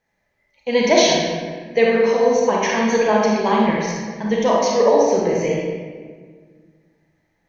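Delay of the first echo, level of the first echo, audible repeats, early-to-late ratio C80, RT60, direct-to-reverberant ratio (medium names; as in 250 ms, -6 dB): no echo, no echo, no echo, 1.5 dB, 1.7 s, -3.0 dB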